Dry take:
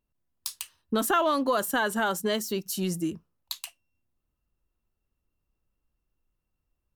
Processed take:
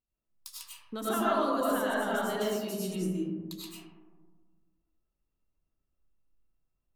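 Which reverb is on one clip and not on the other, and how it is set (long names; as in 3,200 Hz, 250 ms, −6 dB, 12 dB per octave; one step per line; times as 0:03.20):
comb and all-pass reverb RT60 1.6 s, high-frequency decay 0.25×, pre-delay 60 ms, DRR −7.5 dB
level −12.5 dB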